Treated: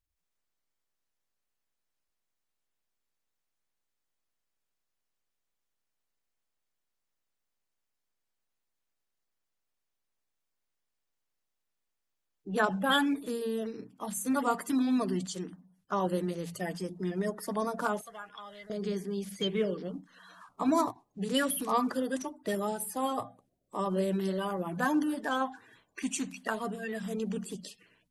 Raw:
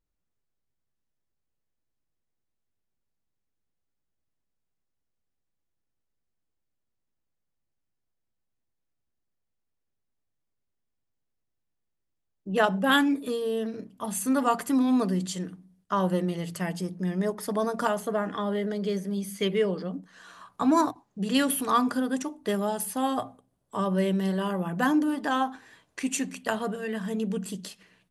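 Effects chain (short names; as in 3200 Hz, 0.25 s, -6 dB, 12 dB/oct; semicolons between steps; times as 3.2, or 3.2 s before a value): bin magnitudes rounded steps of 30 dB; 18.01–18.7 passive tone stack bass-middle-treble 10-0-10; gain -4 dB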